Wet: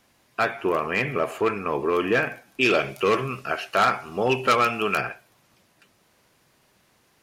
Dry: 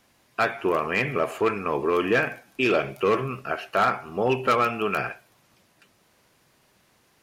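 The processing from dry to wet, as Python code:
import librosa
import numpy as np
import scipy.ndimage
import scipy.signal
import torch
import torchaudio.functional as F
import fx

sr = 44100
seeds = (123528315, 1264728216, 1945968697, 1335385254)

y = fx.peak_eq(x, sr, hz=6300.0, db=7.5, octaves=2.8, at=(2.61, 5.01))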